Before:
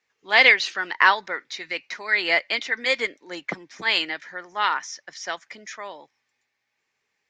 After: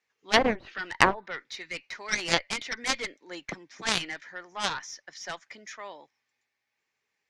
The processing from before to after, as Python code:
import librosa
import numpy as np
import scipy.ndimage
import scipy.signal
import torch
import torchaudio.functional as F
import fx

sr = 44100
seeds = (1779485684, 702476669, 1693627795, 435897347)

y = fx.cheby_harmonics(x, sr, harmonics=(2, 6, 7), levels_db=(-17, -30, -13), full_scale_db=-1.5)
y = fx.env_lowpass_down(y, sr, base_hz=700.0, full_db=-14.0)